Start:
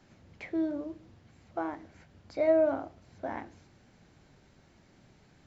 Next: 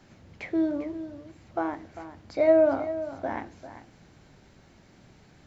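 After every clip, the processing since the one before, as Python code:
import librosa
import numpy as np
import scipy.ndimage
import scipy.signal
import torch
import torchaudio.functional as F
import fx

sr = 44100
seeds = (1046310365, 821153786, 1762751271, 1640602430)

y = x + 10.0 ** (-13.0 / 20.0) * np.pad(x, (int(397 * sr / 1000.0), 0))[:len(x)]
y = y * 10.0 ** (5.0 / 20.0)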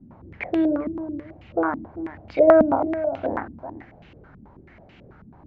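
y = fx.peak_eq(x, sr, hz=62.0, db=4.5, octaves=1.3)
y = fx.filter_held_lowpass(y, sr, hz=9.2, low_hz=240.0, high_hz=2800.0)
y = y * 10.0 ** (3.5 / 20.0)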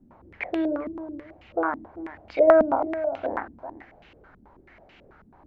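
y = fx.peak_eq(x, sr, hz=130.0, db=-12.5, octaves=2.3)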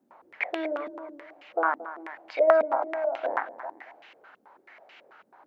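y = scipy.signal.sosfilt(scipy.signal.butter(2, 650.0, 'highpass', fs=sr, output='sos'), x)
y = fx.rider(y, sr, range_db=3, speed_s=0.5)
y = y + 10.0 ** (-14.5 / 20.0) * np.pad(y, (int(226 * sr / 1000.0), 0))[:len(y)]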